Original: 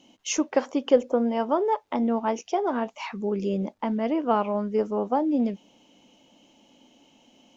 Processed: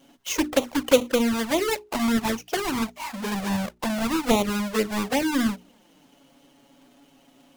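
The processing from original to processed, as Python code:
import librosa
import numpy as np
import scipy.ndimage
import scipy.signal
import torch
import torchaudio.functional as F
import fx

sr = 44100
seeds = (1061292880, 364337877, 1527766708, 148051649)

y = fx.halfwave_hold(x, sr)
y = fx.env_flanger(y, sr, rest_ms=7.6, full_db=-15.0)
y = fx.hum_notches(y, sr, base_hz=60, count=7)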